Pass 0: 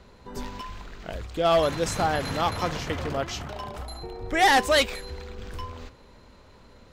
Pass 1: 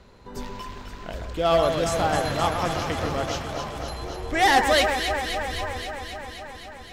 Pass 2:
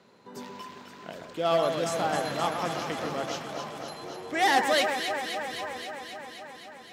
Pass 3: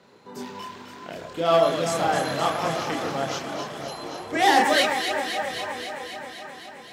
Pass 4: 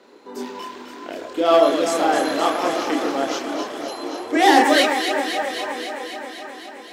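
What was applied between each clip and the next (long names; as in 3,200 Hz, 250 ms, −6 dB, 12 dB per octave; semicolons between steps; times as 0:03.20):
delay that swaps between a low-pass and a high-pass 131 ms, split 1,900 Hz, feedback 86%, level −5.5 dB
high-pass filter 150 Hz 24 dB per octave; level −4.5 dB
multi-voice chorus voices 4, 0.89 Hz, delay 30 ms, depth 1.8 ms; level +7.5 dB
low shelf with overshoot 210 Hz −11 dB, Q 3; level +3 dB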